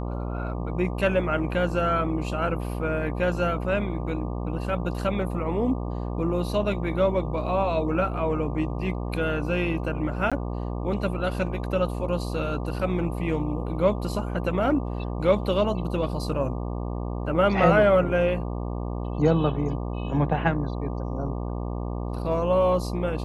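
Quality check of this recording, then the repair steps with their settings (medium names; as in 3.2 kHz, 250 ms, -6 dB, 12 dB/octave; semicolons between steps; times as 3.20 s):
buzz 60 Hz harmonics 20 -30 dBFS
10.30–10.32 s: dropout 16 ms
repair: de-hum 60 Hz, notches 20; interpolate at 10.30 s, 16 ms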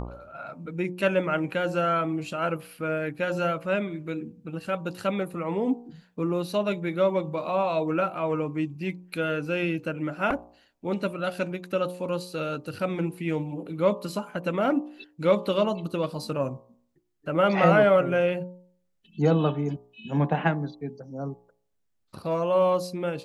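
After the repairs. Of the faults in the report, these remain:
nothing left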